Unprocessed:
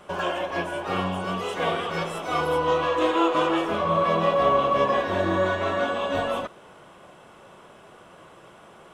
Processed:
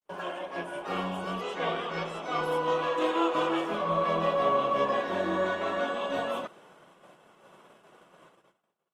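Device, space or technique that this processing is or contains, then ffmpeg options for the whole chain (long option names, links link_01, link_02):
video call: -filter_complex "[0:a]asettb=1/sr,asplit=3[link_01][link_02][link_03];[link_01]atrim=end=1.414[link_04];[link_02]atrim=start=1.41:end=2.43,asetpts=PTS-STARTPTS,afade=type=in:duration=0.004:curve=qsin,afade=type=out:start_time=1.016:duration=0.004:curve=qsin,lowpass=6200[link_05];[link_03]atrim=start=2.426[link_06];[link_04][link_05]acrossfade=duration=0.004:curve1=hsin:curve2=qsin[link_07];[link_07][link_06]acrossfade=duration=0.004:curve1=qsin:curve2=hsin,highpass=frequency=140:width=0.5412,highpass=frequency=140:width=1.3066,dynaudnorm=framelen=120:gausssize=11:maxgain=3.5dB,agate=range=-53dB:threshold=-45dB:ratio=16:detection=peak,volume=-8.5dB" -ar 48000 -c:a libopus -b:a 32k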